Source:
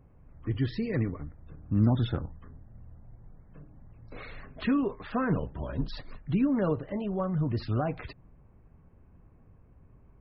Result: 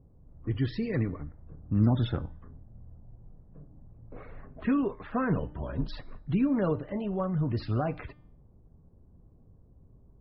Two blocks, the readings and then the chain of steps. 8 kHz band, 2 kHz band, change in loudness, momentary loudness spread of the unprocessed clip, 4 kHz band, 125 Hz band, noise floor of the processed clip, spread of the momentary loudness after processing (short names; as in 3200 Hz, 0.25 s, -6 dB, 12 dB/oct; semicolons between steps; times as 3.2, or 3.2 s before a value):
n/a, -1.0 dB, 0.0 dB, 18 LU, -1.5 dB, 0.0 dB, -58 dBFS, 18 LU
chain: low-pass opened by the level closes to 550 Hz, open at -25 dBFS; de-hum 299.5 Hz, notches 28